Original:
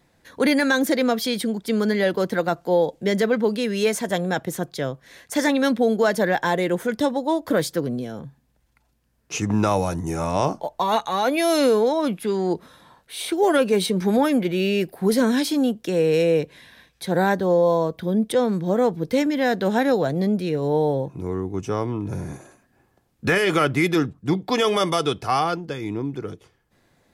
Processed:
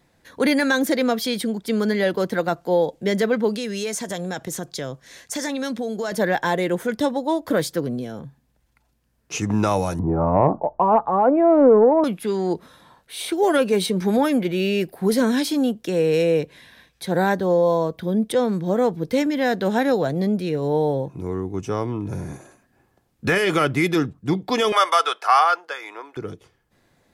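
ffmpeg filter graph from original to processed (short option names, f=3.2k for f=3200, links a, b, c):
-filter_complex "[0:a]asettb=1/sr,asplit=3[a][b][c];[a]atrim=end=3.544[d];[b]atrim=start=3.54:end=6.12,asetpts=PTS-STARTPTS,afade=t=in:d=0.004:c=qsin,afade=t=out:st=2.576:d=0.004:c=qsin,equalizer=f=6.5k:t=o:w=1.2:g=8,acompressor=threshold=-25dB:ratio=3:attack=3.2:release=140:knee=1:detection=peak[e];[c]atrim=start=6.116[f];[d][e]acrossfade=d=0.004:c1=hsin:c2=qsin[g];[g][f]acrossfade=d=0.004:c1=qsin:c2=hsin,asettb=1/sr,asplit=3[h][i][j];[h]atrim=end=9.994[k];[i]atrim=start=9.99:end=12.04,asetpts=PTS-STARTPTS,afade=t=in:d=0.004:c=qsin,afade=t=out:st=2.046:d=0.004:c=qsin,lowpass=f=1.1k:w=0.5412,lowpass=f=1.1k:w=1.3066,acontrast=39[l];[j]atrim=start=12.036[m];[k][l]acrossfade=d=0.004:c1=hsin:c2=qsin[n];[n][m]acrossfade=d=0.004:c1=qsin:c2=hsin,asettb=1/sr,asplit=3[o][p][q];[o]atrim=end=24.724[r];[p]atrim=start=24.72:end=26.17,asetpts=PTS-STARTPTS,afade=t=in:d=0.004:c=qsin,afade=t=out:st=1.446:d=0.004:c=qsin,highpass=f=550:w=0.5412,highpass=f=550:w=1.3066,equalizer=f=1.4k:w=1.1:g=10[s];[q]atrim=start=26.166[t];[r][s]acrossfade=d=0.004:c1=hsin:c2=qsin[u];[u][t]acrossfade=d=0.004:c1=qsin:c2=hsin"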